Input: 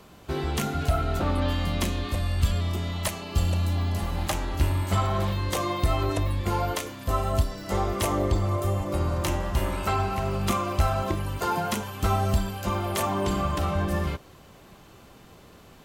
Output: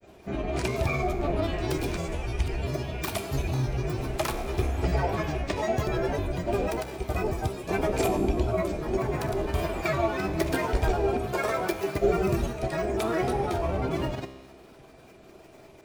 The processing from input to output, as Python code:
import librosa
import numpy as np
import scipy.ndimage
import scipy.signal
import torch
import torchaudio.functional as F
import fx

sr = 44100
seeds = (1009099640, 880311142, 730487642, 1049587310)

y = fx.granulator(x, sr, seeds[0], grain_ms=100.0, per_s=20.0, spray_ms=100.0, spread_st=12)
y = fx.comb_fb(y, sr, f0_hz=66.0, decay_s=1.4, harmonics='all', damping=0.0, mix_pct=70)
y = fx.small_body(y, sr, hz=(380.0, 640.0, 2400.0), ring_ms=35, db=12)
y = F.gain(torch.from_numpy(y), 5.0).numpy()